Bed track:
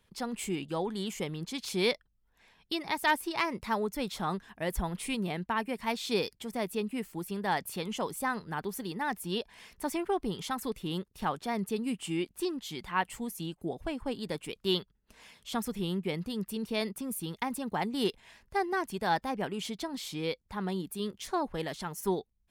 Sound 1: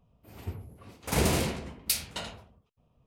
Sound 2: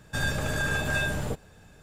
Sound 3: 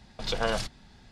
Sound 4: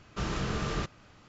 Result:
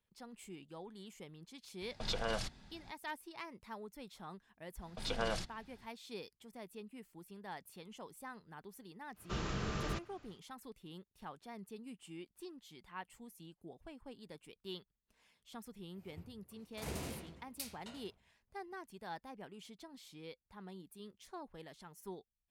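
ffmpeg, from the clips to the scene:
-filter_complex "[3:a]asplit=2[a][b];[0:a]volume=-17dB[c];[a]alimiter=limit=-20dB:level=0:latency=1:release=135,atrim=end=1.11,asetpts=PTS-STARTPTS,volume=-5dB,afade=t=in:d=0.004:c=hsin,afade=t=out:st=1.106:d=0.004:c=hsin,adelay=1810[d];[b]atrim=end=1.11,asetpts=PTS-STARTPTS,volume=-8.5dB,afade=t=in:d=0.05,afade=t=out:st=1.06:d=0.05,adelay=4780[e];[4:a]atrim=end=1.28,asetpts=PTS-STARTPTS,volume=-6.5dB,afade=t=in:d=0.1,afade=t=out:st=1.18:d=0.1,adelay=9130[f];[1:a]atrim=end=3.06,asetpts=PTS-STARTPTS,volume=-17dB,afade=t=in:d=0.004:c=hsin,afade=t=out:st=3.056:d=0.004:c=hsin,adelay=15700[g];[c][d][e][f][g]amix=inputs=5:normalize=0"

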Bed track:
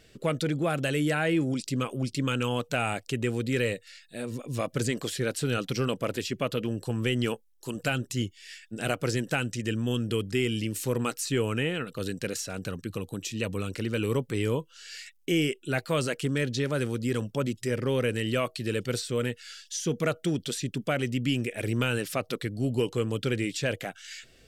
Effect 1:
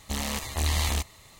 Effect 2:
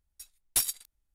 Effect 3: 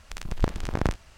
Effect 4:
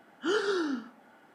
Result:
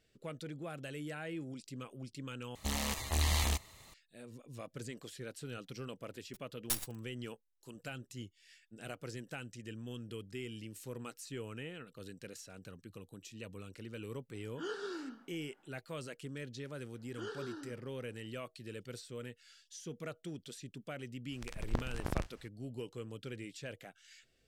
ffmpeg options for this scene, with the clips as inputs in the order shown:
-filter_complex "[4:a]asplit=2[a][b];[0:a]volume=-16.5dB[c];[2:a]acrusher=bits=4:dc=4:mix=0:aa=0.000001[d];[c]asplit=2[e][f];[e]atrim=end=2.554[g];[1:a]atrim=end=1.39,asetpts=PTS-STARTPTS,volume=-5dB[h];[f]atrim=start=3.936[i];[d]atrim=end=1.14,asetpts=PTS-STARTPTS,volume=-8dB,afade=t=in:d=0.004:c=hsin,afade=t=out:st=1.136:d=0.004:c=hsin,adelay=6140[j];[a]atrim=end=1.34,asetpts=PTS-STARTPTS,volume=-12.5dB,afade=t=in:d=0.004:c=hsin,afade=t=out:st=1.336:d=0.004:c=hsin,adelay=14350[k];[b]atrim=end=1.34,asetpts=PTS-STARTPTS,volume=-15.5dB,afade=t=in:d=0.004:c=hsin,afade=t=out:st=1.336:d=0.004:c=hsin,adelay=16930[l];[3:a]atrim=end=1.17,asetpts=PTS-STARTPTS,volume=-10dB,afade=t=in:d=0.004:c=hsin,afade=t=out:st=1.166:d=0.004:c=hsin,adelay=21310[m];[g][h]acrossfade=d=0.004:c1=hsin:c2=hsin[n];[n][i]acrossfade=d=0.004:c1=hsin:c2=hsin[o];[o][j][k][l][m]amix=inputs=5:normalize=0"

